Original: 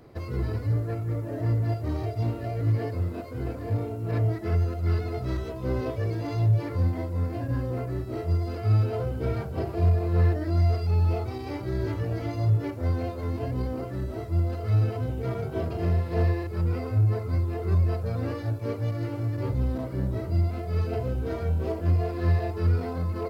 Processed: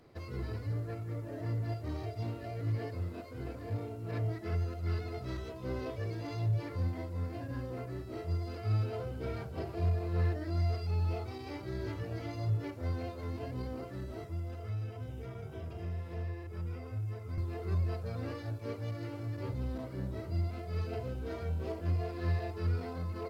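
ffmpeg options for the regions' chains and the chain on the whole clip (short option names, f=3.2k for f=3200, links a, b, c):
-filter_complex "[0:a]asettb=1/sr,asplit=3[a][b][c];[a]atrim=end=14.244[d];[b]atrim=start=14.24:end=17.38,asetpts=PTS-STARTPTS,afade=t=in:d=0.004:c=qsin,afade=t=out:st=3.136:d=0.004:c=qsin,bandreject=f=4.3k:w=5.1,acrossover=split=130|1900[e][f][g];[e]acompressor=threshold=-28dB:ratio=4[h];[f]acompressor=threshold=-37dB:ratio=4[i];[g]acompressor=threshold=-57dB:ratio=4[j];[h][i][j]amix=inputs=3:normalize=0[k];[c]atrim=start=17.376[l];[d][k]acrossfade=d=0.004:c1=hsin:c2=qsin[m];[m][l]acrossfade=d=0.004:c1=qsin:c2=hsin,lowpass=f=3.5k:p=1,highshelf=f=2.4k:g=11.5,bandreject=f=60:t=h:w=6,bandreject=f=120:t=h:w=6,volume=-9dB"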